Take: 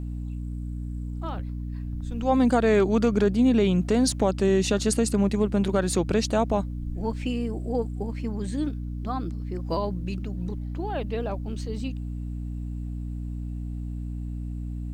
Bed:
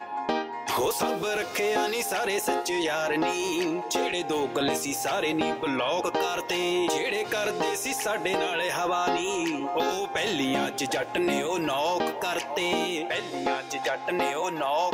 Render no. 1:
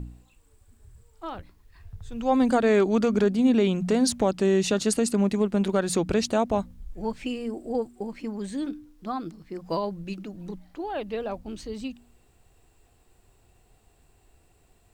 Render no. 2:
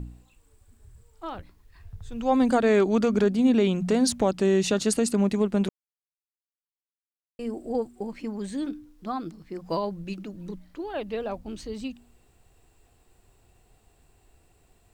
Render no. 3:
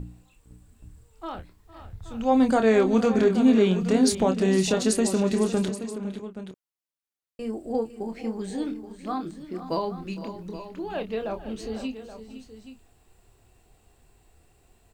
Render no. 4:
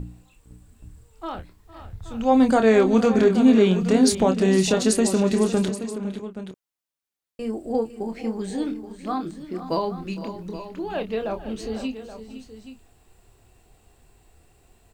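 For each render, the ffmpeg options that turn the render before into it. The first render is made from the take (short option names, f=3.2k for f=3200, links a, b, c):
-af "bandreject=f=60:t=h:w=4,bandreject=f=120:t=h:w=4,bandreject=f=180:t=h:w=4,bandreject=f=240:t=h:w=4,bandreject=f=300:t=h:w=4"
-filter_complex "[0:a]asettb=1/sr,asplit=3[a][b][c];[a]atrim=end=10.304[d];[b]atrim=start=10.3:end=10.94,asetpts=PTS-STARTPTS,afade=t=in:d=0.004:c=qsin,afade=t=out:st=0.636:d=0.004:c=qsin,equalizer=f=760:w=5.7:g=-12.5[e];[c]atrim=start=10.936[f];[d][e]acrossfade=d=0.004:c1=hsin:c2=qsin[g];[g][f]acrossfade=d=0.004:c1=qsin:c2=hsin,asplit=3[h][i][j];[h]atrim=end=5.69,asetpts=PTS-STARTPTS,afade=t=out:st=5.686:d=0.004:c=hsin[k];[i]atrim=start=5.69:end=7.39,asetpts=PTS-STARTPTS,volume=0[l];[j]atrim=start=7.39,asetpts=PTS-STARTPTS,afade=t=in:d=0.004:c=hsin[m];[k][l][m]concat=n=3:v=0:a=1"
-filter_complex "[0:a]asplit=2[a][b];[b]adelay=27,volume=-7.5dB[c];[a][c]amix=inputs=2:normalize=0,asplit=2[d][e];[e]aecho=0:1:458|508|825:0.133|0.211|0.224[f];[d][f]amix=inputs=2:normalize=0"
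-af "volume=3dB"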